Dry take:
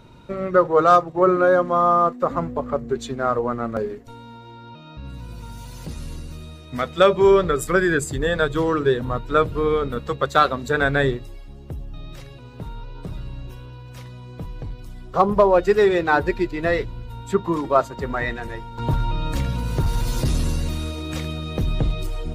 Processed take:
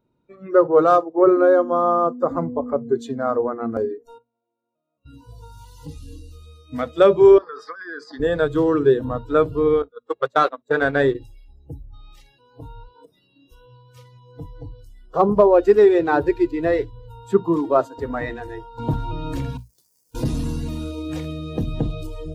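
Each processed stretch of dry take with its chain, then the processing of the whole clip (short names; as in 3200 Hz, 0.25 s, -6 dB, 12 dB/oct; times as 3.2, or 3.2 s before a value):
4.18–5.06 vowel filter a + low shelf 440 Hz +6 dB + notch comb 810 Hz
7.38–8.2 EQ curve 130 Hz 0 dB, 200 Hz +12 dB, 350 Hz +2 dB, 910 Hz +9 dB, 1700 Hz +2 dB, 2800 Hz -13 dB, 5100 Hz +13 dB, 7500 Hz -17 dB + negative-ratio compressor -21 dBFS + band-pass 2100 Hz, Q 1.1
9.82–11.15 gate -23 dBFS, range -26 dB + high shelf 6600 Hz +4.5 dB + overdrive pedal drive 10 dB, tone 3100 Hz, clips at -4 dBFS
12.88–13.52 HPF 160 Hz + compressor, threshold -38 dBFS
19.57–20.15 median filter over 41 samples + differentiator
whole clip: notches 60/120/180/240 Hz; spectral noise reduction 23 dB; bell 310 Hz +12 dB 3 oct; gain -7.5 dB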